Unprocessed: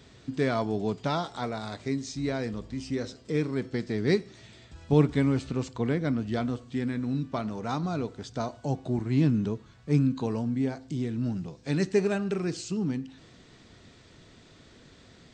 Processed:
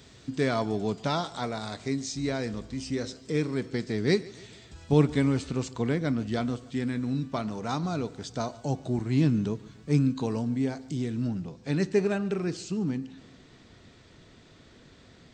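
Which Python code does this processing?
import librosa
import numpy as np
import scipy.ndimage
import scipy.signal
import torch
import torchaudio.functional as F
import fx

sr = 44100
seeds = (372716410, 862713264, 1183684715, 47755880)

y = fx.high_shelf(x, sr, hz=4800.0, db=fx.steps((0.0, 7.5), (11.26, -3.5)))
y = fx.echo_feedback(y, sr, ms=144, feedback_pct=53, wet_db=-22.0)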